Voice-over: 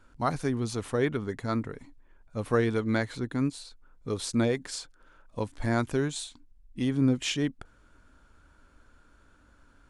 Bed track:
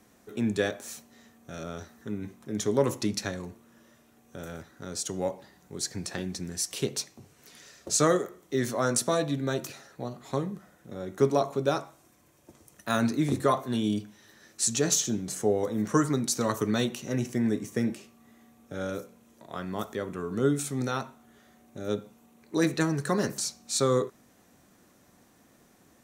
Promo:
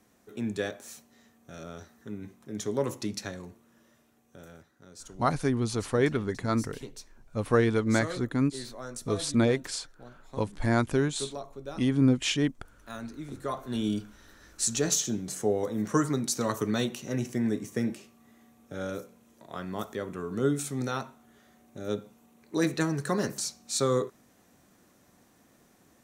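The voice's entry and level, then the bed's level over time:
5.00 s, +2.0 dB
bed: 4.01 s -4.5 dB
4.91 s -14 dB
13.3 s -14 dB
13.81 s -1.5 dB

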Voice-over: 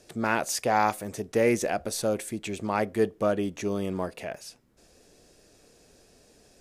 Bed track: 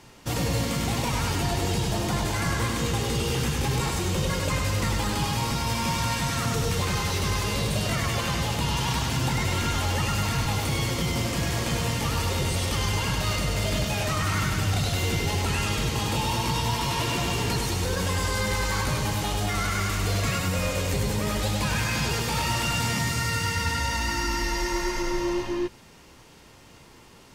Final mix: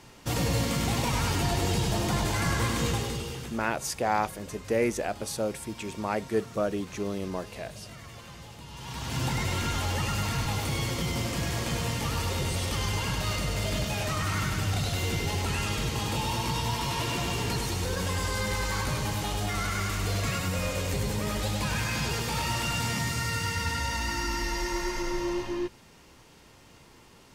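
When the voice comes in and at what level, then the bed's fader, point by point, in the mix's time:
3.35 s, -3.0 dB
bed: 2.89 s -1 dB
3.72 s -19 dB
8.69 s -19 dB
9.2 s -3.5 dB

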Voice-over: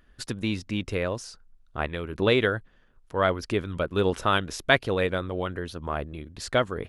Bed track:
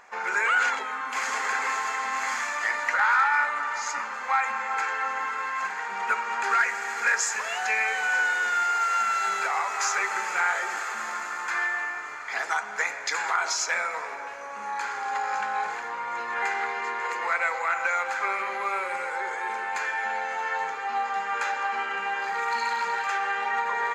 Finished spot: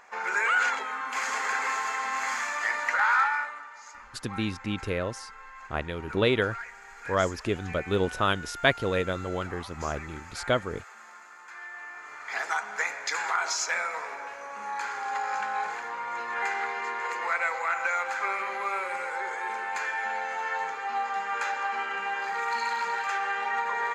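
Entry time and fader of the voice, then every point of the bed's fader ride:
3.95 s, -2.0 dB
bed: 3.22 s -1.5 dB
3.71 s -16.5 dB
11.57 s -16.5 dB
12.34 s -2 dB

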